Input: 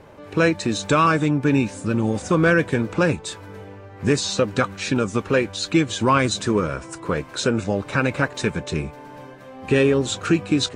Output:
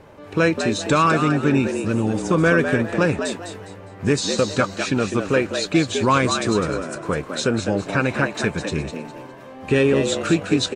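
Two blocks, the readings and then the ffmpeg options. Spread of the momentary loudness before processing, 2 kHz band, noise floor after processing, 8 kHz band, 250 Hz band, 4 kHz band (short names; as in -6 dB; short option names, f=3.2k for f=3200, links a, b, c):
15 LU, +1.0 dB, -40 dBFS, +1.0 dB, +0.5 dB, +0.5 dB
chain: -filter_complex "[0:a]asplit=5[a][b][c][d][e];[b]adelay=204,afreqshift=85,volume=-7.5dB[f];[c]adelay=408,afreqshift=170,volume=-17.7dB[g];[d]adelay=612,afreqshift=255,volume=-27.8dB[h];[e]adelay=816,afreqshift=340,volume=-38dB[i];[a][f][g][h][i]amix=inputs=5:normalize=0"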